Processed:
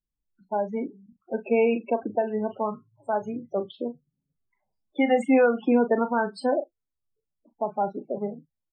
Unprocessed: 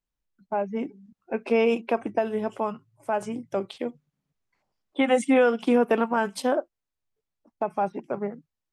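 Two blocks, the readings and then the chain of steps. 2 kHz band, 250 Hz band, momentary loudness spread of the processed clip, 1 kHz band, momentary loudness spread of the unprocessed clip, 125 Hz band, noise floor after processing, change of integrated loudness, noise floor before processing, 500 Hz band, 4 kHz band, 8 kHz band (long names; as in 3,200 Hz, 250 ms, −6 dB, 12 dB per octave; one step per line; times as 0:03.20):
−1.5 dB, +0.5 dB, 14 LU, −0.5 dB, 13 LU, can't be measured, −84 dBFS, 0.0 dB, below −85 dBFS, 0.0 dB, −6.5 dB, below −10 dB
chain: low-pass filter 8,500 Hz 24 dB per octave
spectral peaks only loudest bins 16
double-tracking delay 38 ms −11 dB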